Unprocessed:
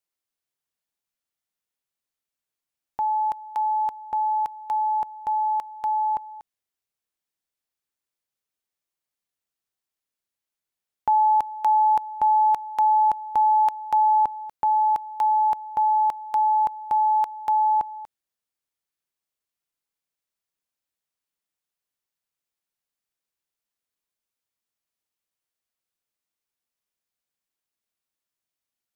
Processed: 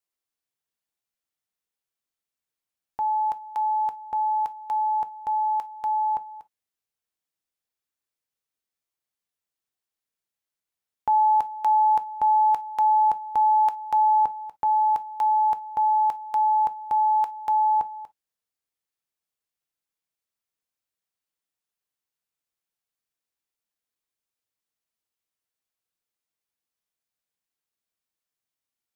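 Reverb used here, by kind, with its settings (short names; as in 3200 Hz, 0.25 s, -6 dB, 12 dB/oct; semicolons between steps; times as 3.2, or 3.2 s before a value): non-linear reverb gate 80 ms falling, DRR 11.5 dB; gain -2 dB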